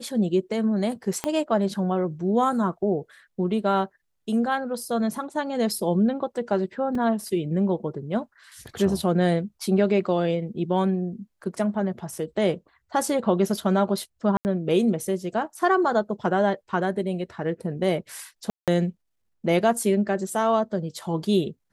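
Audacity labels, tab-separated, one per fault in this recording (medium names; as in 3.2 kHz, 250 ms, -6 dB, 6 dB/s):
1.240000	1.240000	pop -11 dBFS
6.950000	6.950000	dropout 3 ms
14.370000	14.450000	dropout 79 ms
18.500000	18.680000	dropout 177 ms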